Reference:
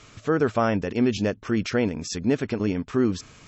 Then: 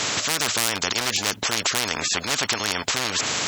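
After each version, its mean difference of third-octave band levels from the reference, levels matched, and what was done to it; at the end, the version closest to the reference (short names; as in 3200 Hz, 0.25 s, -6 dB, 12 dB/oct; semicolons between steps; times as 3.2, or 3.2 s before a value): 16.0 dB: one-sided fold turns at -19.5 dBFS; in parallel at -0.5 dB: limiter -17.5 dBFS, peak gain reduction 8.5 dB; on the sum: HPF 270 Hz 12 dB/oct; spectral compressor 10:1; gain +5.5 dB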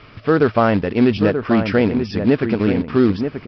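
4.0 dB: bell 4000 Hz -9 dB 0.49 oct; in parallel at -6 dB: companded quantiser 4-bit; on the sum: outdoor echo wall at 160 m, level -7 dB; downsampling 11025 Hz; gain +3.5 dB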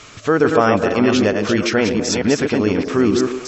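5.5 dB: reverse delay 0.222 s, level -5 dB; low shelf 280 Hz -8 dB; delay with a stepping band-pass 0.125 s, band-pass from 360 Hz, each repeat 0.7 oct, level -6 dB; in parallel at -1 dB: limiter -18 dBFS, peak gain reduction 8 dB; on the sum: gain +5 dB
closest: second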